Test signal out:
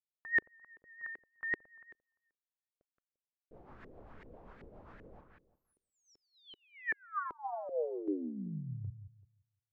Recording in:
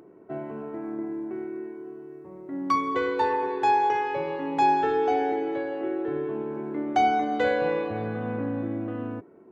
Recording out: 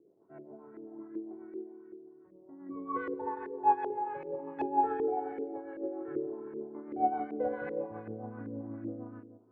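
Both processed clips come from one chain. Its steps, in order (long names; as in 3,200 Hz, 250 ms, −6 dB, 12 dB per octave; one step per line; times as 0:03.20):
rotating-speaker cabinet horn 7.5 Hz
feedback echo with a low-pass in the loop 173 ms, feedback 26%, low-pass 3,200 Hz, level −6 dB
auto-filter low-pass saw up 2.6 Hz 380–1,900 Hz
expander for the loud parts 1.5 to 1, over −33 dBFS
level −7 dB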